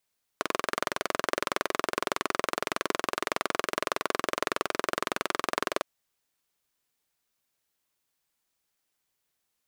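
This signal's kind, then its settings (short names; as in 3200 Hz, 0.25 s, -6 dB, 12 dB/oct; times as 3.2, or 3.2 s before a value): single-cylinder engine model, steady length 5.41 s, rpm 2600, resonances 410/600/1100 Hz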